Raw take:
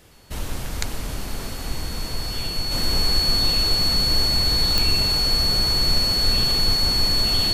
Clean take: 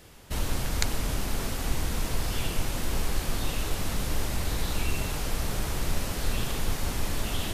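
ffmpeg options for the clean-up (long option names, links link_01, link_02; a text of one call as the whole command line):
ffmpeg -i in.wav -af "adeclick=threshold=4,bandreject=frequency=4400:width=30,asetnsamples=nb_out_samples=441:pad=0,asendcmd='2.71 volume volume -5dB',volume=0dB" out.wav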